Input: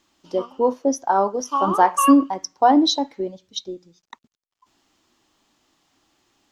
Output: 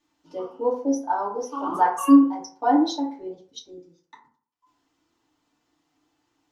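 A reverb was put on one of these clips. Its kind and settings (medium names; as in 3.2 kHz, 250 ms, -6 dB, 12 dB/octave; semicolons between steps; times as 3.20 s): FDN reverb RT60 0.48 s, low-frequency decay 0.9×, high-frequency decay 0.4×, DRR -7 dB; trim -14.5 dB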